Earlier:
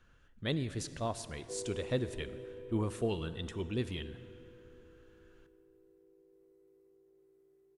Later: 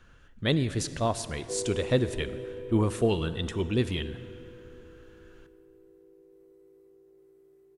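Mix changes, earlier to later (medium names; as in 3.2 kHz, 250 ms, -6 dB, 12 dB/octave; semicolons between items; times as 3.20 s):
speech +8.5 dB; background +8.0 dB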